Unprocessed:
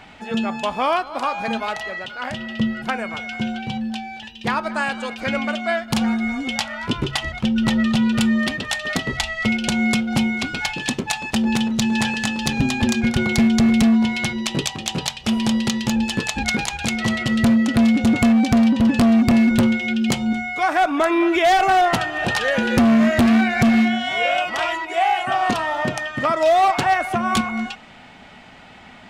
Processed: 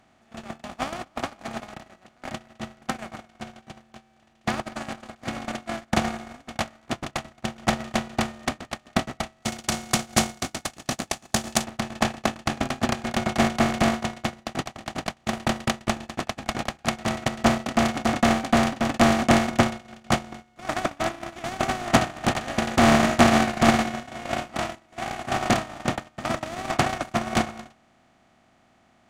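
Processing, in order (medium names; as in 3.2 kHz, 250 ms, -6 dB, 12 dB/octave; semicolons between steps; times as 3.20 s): spectral levelling over time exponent 0.2; gate -4 dBFS, range -54 dB; tone controls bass +3 dB, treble +1 dB, from 9.43 s treble +13 dB, from 11.63 s treble +1 dB; trim +4.5 dB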